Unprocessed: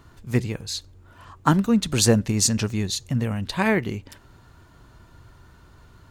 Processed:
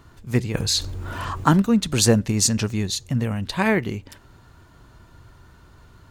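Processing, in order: 0.54–1.62 s: level flattener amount 50%; trim +1 dB

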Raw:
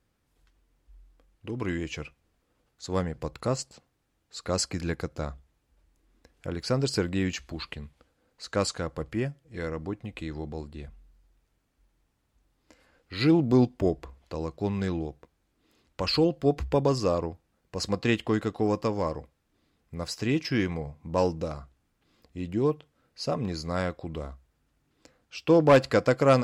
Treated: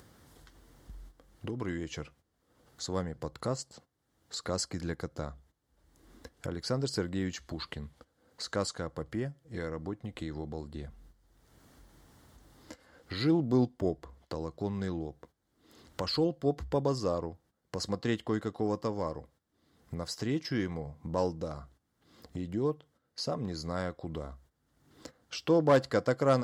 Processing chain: gate -56 dBFS, range -14 dB; high-pass 66 Hz; peaking EQ 2.5 kHz -12 dB 0.27 oct; upward compressor, threshold -25 dBFS; trim -5.5 dB

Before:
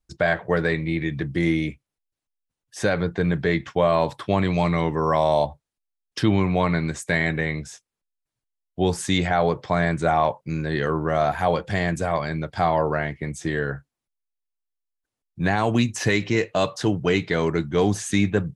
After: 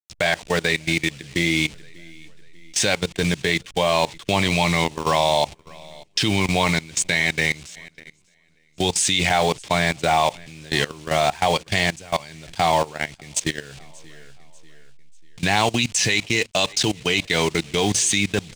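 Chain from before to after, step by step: send-on-delta sampling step -35.5 dBFS; in parallel at -2 dB: compression 12:1, threshold -31 dBFS, peak gain reduction 17.5 dB; on the sum: high-order bell 4.5 kHz +15.5 dB 2.4 oct; on a send: feedback delay 591 ms, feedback 42%, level -23 dB; on the sum: level held to a coarse grid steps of 20 dB; dynamic bell 860 Hz, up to +6 dB, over -37 dBFS, Q 2.6

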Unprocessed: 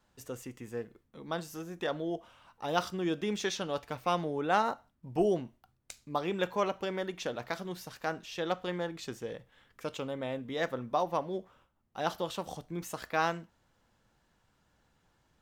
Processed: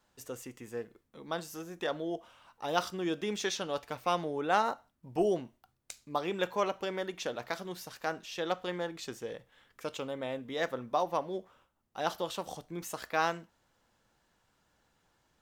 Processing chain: tone controls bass -5 dB, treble +2 dB

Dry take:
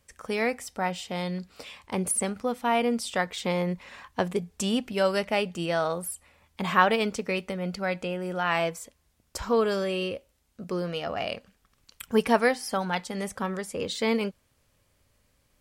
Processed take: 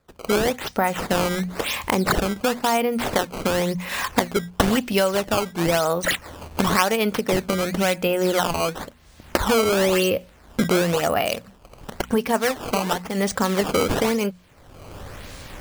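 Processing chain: recorder AGC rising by 34 dB/s; 3.89–5.04 s: treble shelf 4.2 kHz +10 dB; decimation with a swept rate 14×, swing 160% 0.96 Hz; hum notches 60/120/180/240 Hz

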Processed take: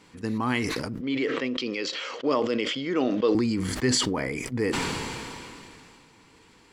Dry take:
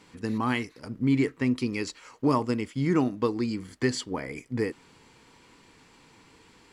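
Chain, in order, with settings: 1.01–3.35 s: cabinet simulation 350–5700 Hz, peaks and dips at 530 Hz +8 dB, 920 Hz -8 dB, 3.2 kHz +9 dB; decay stretcher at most 22 dB/s

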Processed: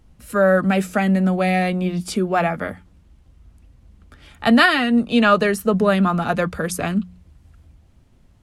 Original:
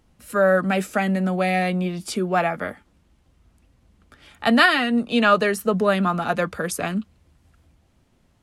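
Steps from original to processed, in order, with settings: bass shelf 150 Hz +11 dB; de-hum 89.98 Hz, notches 2; trim +1 dB

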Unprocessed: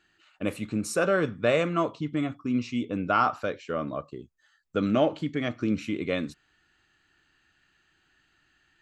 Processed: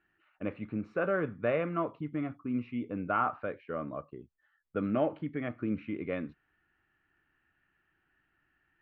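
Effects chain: low-pass 2.3 kHz 24 dB/octave; trim -6 dB

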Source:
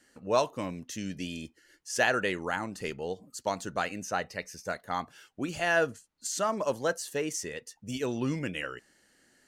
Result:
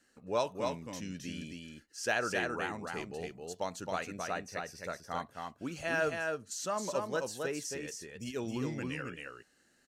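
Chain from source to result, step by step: delay 257 ms -4 dB; speed mistake 25 fps video run at 24 fps; trim -6 dB

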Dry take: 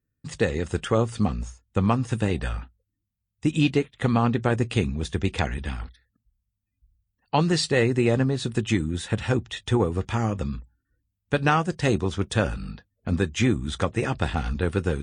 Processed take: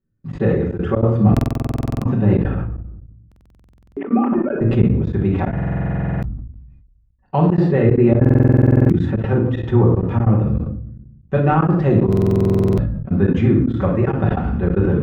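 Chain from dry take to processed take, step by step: 2.59–4.61 s: formants replaced by sine waves; de-esser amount 65%; reverberation RT60 0.70 s, pre-delay 5 ms, DRR -5 dB; trance gate "xxxx.xxxx.xx." 190 bpm -24 dB; Bessel low-pass 1 kHz, order 2; buffer glitch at 1.32/3.27/5.53/8.20/12.08 s, samples 2048, times 14; decay stretcher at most 44 dB/s

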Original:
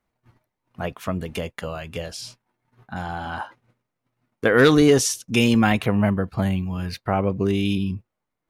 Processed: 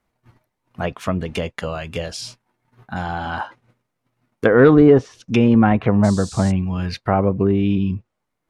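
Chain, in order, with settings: low-pass that closes with the level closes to 1.2 kHz, closed at -16.5 dBFS; 6.03–6.50 s: band noise 3.8–8.7 kHz -42 dBFS; trim +4.5 dB

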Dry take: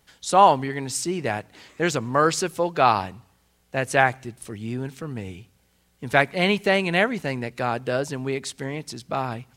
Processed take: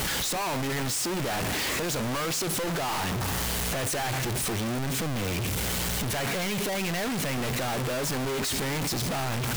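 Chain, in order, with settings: one-bit comparator; trim -4.5 dB

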